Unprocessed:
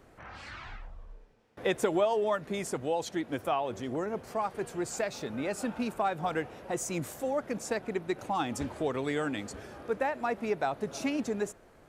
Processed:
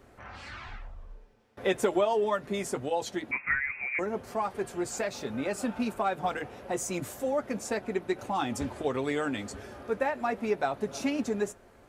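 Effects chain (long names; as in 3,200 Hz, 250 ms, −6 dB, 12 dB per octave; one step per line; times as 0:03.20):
0:03.31–0:03.99: voice inversion scrambler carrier 2,600 Hz
notch comb filter 160 Hz
level +2.5 dB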